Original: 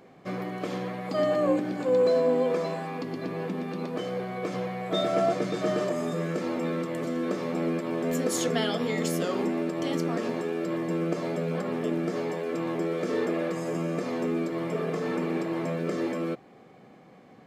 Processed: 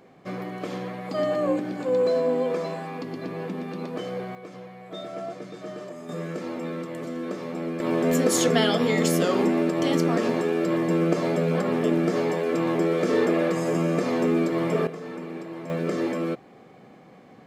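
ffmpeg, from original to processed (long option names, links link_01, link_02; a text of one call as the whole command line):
ffmpeg -i in.wav -af "asetnsamples=nb_out_samples=441:pad=0,asendcmd='4.35 volume volume -10dB;6.09 volume volume -2.5dB;7.8 volume volume 6dB;14.87 volume volume -6.5dB;15.7 volume volume 3dB',volume=0dB" out.wav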